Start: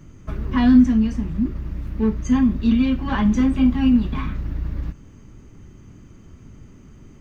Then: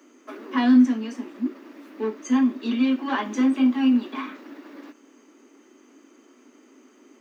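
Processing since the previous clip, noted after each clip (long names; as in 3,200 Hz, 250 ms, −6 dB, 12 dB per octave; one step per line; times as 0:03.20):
Butterworth high-pass 250 Hz 72 dB per octave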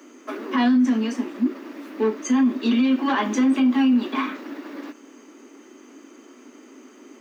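brickwall limiter −19.5 dBFS, peak gain reduction 11.5 dB
level +7 dB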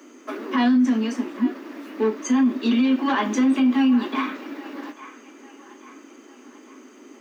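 delay with a band-pass on its return 841 ms, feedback 47%, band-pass 1,400 Hz, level −14 dB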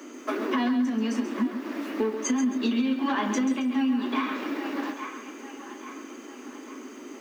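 downward compressor 6 to 1, threshold −28 dBFS, peak gain reduction 12 dB
feedback echo at a low word length 135 ms, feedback 35%, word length 10 bits, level −9 dB
level +4 dB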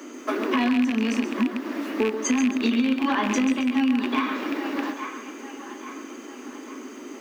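loose part that buzzes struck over −32 dBFS, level −21 dBFS
level +3 dB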